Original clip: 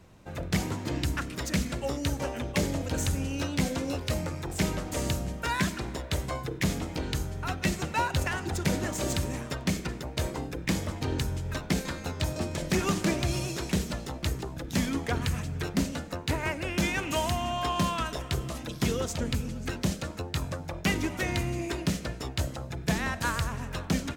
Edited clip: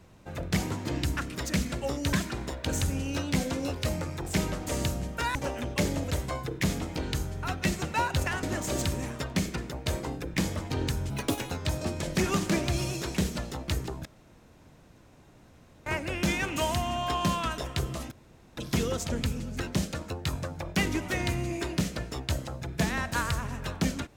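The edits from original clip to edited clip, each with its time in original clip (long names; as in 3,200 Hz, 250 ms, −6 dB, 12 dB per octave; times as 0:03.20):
0:02.13–0:02.90: swap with 0:05.60–0:06.12
0:08.43–0:08.74: remove
0:11.41–0:12.05: play speed 159%
0:14.60–0:16.41: fill with room tone
0:18.66: splice in room tone 0.46 s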